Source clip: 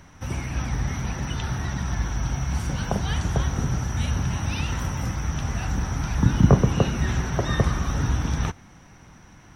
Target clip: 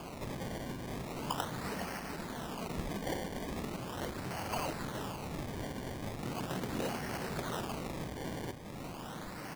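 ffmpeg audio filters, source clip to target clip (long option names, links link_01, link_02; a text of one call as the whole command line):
ffmpeg -i in.wav -filter_complex "[0:a]asoftclip=type=hard:threshold=-20.5dB,asettb=1/sr,asplit=3[link_01][link_02][link_03];[link_01]atrim=end=1.614[link_04];[link_02]atrim=start=1.61:end=3.77,asetpts=PTS-STARTPTS,afade=type=in:duration=0.004:curve=qsin,afade=type=out:start_time=2.156:duration=0.004:curve=qsin,aecho=1:1:4.5:0.96,atrim=end_sample=95256[link_05];[link_03]atrim=start=3.766[link_06];[link_04][link_05]acrossfade=duration=0.004:curve1=hsin:curve2=qsin[link_07];[link_07][link_06]acrossfade=duration=0.004:curve1=qsin:curve2=hsin,acompressor=threshold=-39dB:ratio=8,aecho=1:1:415|830|1245|1660|2075|2490:0.316|0.177|0.0992|0.0555|0.0311|0.0174,aeval=exprs='0.0141*(abs(mod(val(0)/0.0141+3,4)-2)-1)':channel_layout=same,highpass=180,lowpass=5600,equalizer=frequency=3000:width=3.4:gain=14.5,acrusher=samples=23:mix=1:aa=0.000001:lfo=1:lforange=23:lforate=0.39,volume=6.5dB" out.wav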